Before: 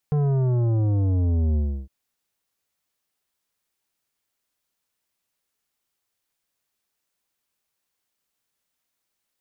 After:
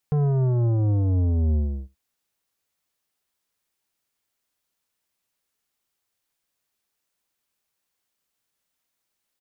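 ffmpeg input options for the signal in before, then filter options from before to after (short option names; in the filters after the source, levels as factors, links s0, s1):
-f lavfi -i "aevalsrc='0.106*clip((1.76-t)/0.32,0,1)*tanh(3.55*sin(2*PI*150*1.76/log(65/150)*(exp(log(65/150)*t/1.76)-1)))/tanh(3.55)':d=1.76:s=44100"
-af "aecho=1:1:76:0.0668"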